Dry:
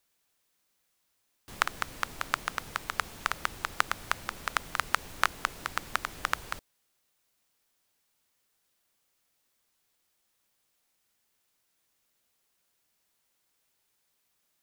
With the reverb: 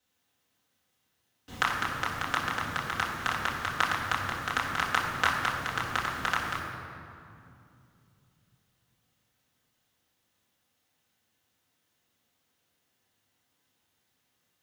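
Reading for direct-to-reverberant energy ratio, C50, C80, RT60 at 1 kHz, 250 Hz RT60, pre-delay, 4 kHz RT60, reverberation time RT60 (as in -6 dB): -6.5 dB, 3.0 dB, 3.5 dB, 2.5 s, 3.9 s, 3 ms, 1.6 s, 2.6 s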